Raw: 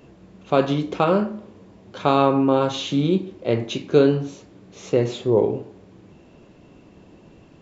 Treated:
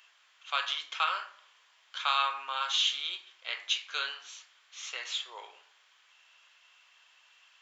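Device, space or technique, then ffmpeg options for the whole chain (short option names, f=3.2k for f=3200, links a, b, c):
headphones lying on a table: -af "highpass=f=1.3k:w=0.5412,highpass=f=1.3k:w=1.3066,equalizer=f=3.2k:t=o:w=0.23:g=7"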